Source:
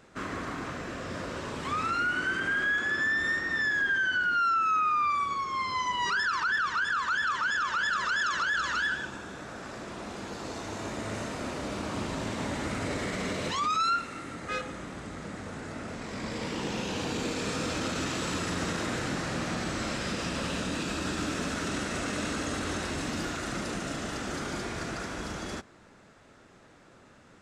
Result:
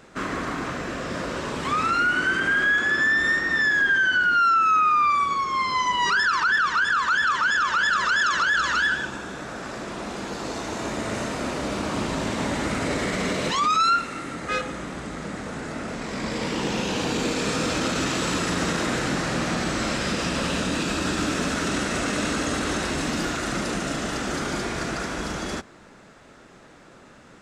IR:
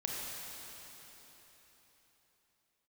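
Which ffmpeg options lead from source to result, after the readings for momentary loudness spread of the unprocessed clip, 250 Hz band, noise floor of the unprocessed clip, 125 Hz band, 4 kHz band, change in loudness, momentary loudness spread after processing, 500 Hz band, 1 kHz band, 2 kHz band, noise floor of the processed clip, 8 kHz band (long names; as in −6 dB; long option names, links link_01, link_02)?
13 LU, +7.0 dB, −56 dBFS, +5.5 dB, +7.0 dB, +7.0 dB, 13 LU, +7.0 dB, +7.0 dB, +7.0 dB, −49 dBFS, +7.0 dB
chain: -af "equalizer=frequency=97:width_type=o:width=0.23:gain=-12,volume=7dB"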